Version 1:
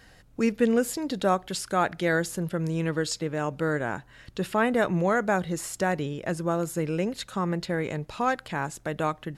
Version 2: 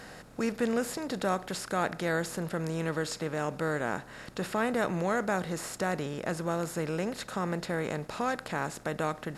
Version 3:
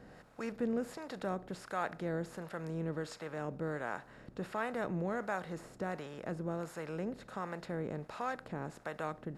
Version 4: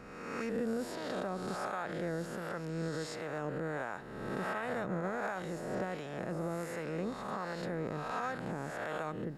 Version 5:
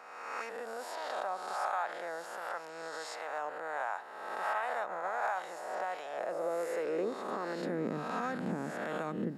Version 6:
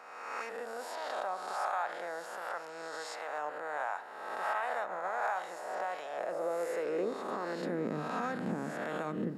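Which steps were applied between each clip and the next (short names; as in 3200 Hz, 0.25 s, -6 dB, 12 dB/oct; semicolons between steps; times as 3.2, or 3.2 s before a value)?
per-bin compression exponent 0.6; gain -8 dB
high shelf 3200 Hz -10.5 dB; harmonic tremolo 1.4 Hz, depth 70%, crossover 560 Hz; gain -3.5 dB
spectral swells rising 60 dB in 1.36 s; limiter -26.5 dBFS, peak gain reduction 6.5 dB
high-pass sweep 800 Hz -> 210 Hz, 5.87–7.99
reverb RT60 0.70 s, pre-delay 33 ms, DRR 13.5 dB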